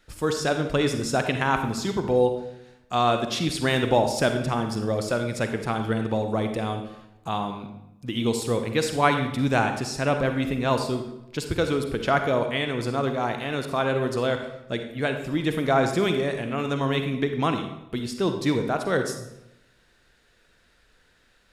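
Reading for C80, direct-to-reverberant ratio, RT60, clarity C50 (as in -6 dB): 9.5 dB, 6.0 dB, 0.90 s, 7.0 dB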